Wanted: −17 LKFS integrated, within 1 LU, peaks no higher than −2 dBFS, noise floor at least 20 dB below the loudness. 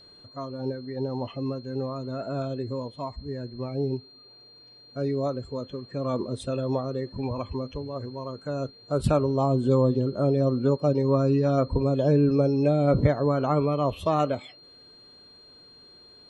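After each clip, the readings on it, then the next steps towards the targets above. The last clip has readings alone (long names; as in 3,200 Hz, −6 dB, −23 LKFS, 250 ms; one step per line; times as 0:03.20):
interfering tone 4,200 Hz; level of the tone −50 dBFS; integrated loudness −26.5 LKFS; sample peak −8.5 dBFS; target loudness −17.0 LKFS
→ notch filter 4,200 Hz, Q 30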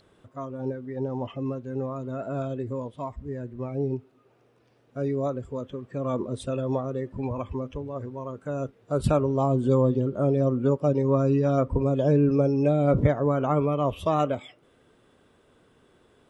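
interfering tone none found; integrated loudness −26.5 LKFS; sample peak −8.5 dBFS; target loudness −17.0 LKFS
→ level +9.5 dB
brickwall limiter −2 dBFS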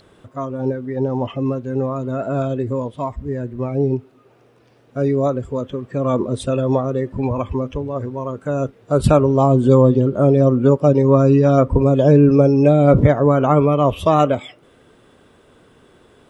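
integrated loudness −17.0 LKFS; sample peak −2.0 dBFS; background noise floor −53 dBFS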